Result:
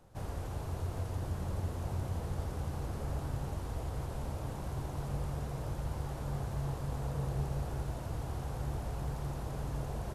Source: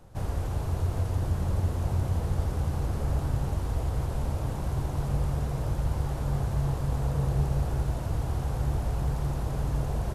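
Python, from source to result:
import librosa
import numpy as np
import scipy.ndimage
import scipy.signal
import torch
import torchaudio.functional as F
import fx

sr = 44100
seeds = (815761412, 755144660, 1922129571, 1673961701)

y = fx.low_shelf(x, sr, hz=130.0, db=-5.5)
y = y * 10.0 ** (-5.5 / 20.0)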